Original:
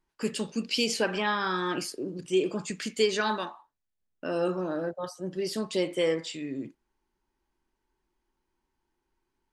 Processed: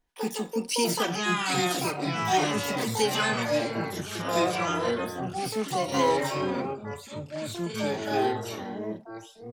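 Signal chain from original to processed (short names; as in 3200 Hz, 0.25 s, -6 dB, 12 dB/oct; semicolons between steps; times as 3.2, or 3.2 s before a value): harmoniser +12 st -1 dB; comb 4.1 ms, depth 45%; echoes that change speed 0.586 s, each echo -4 st, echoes 3; gain -3 dB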